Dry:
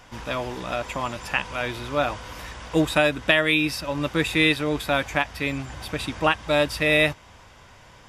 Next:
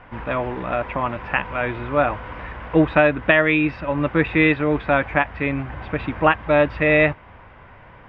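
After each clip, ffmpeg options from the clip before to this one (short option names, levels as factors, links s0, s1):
-af "lowpass=f=2300:w=0.5412,lowpass=f=2300:w=1.3066,volume=1.78"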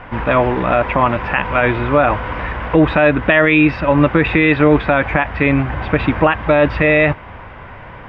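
-af "alimiter=level_in=3.76:limit=0.891:release=50:level=0:latency=1,volume=0.891"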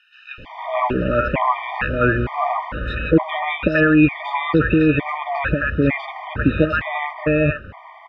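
-filter_complex "[0:a]aresample=32000,aresample=44100,acrossover=split=760|2600[s0][s1][s2];[s0]adelay=380[s3];[s1]adelay=460[s4];[s3][s4][s2]amix=inputs=3:normalize=0,afftfilt=real='re*gt(sin(2*PI*1.1*pts/sr)*(1-2*mod(floor(b*sr/1024/610),2)),0)':imag='im*gt(sin(2*PI*1.1*pts/sr)*(1-2*mod(floor(b*sr/1024/610),2)),0)':win_size=1024:overlap=0.75"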